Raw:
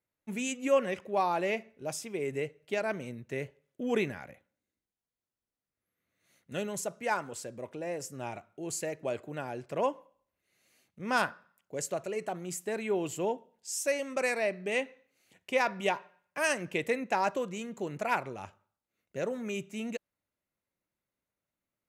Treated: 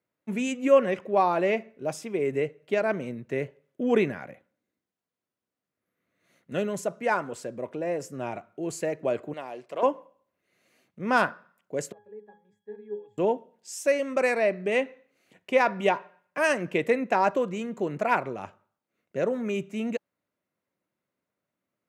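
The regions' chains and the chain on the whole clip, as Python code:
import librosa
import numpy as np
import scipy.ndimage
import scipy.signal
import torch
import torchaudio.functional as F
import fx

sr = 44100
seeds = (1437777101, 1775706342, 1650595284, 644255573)

y = fx.chain(x, sr, fx.highpass(hz=870.0, slope=6),
    fx.peak_eq(hz=1500.0, db=-11.5, octaves=0.32),
    fx.doppler_dist(depth_ms=0.11), at=(9.33, 9.83))
y = fx.chain(y, sr, fx.peak_eq(hz=200.0, db=-9.0, octaves=1.7),
    fx.octave_resonator(note='G#', decay_s=0.33), at=(11.92, 13.18))
y = scipy.signal.sosfilt(scipy.signal.butter(2, 140.0, 'highpass', fs=sr, output='sos'), y)
y = fx.high_shelf(y, sr, hz=3000.0, db=-12.0)
y = fx.notch(y, sr, hz=840.0, q=15.0)
y = F.gain(torch.from_numpy(y), 7.5).numpy()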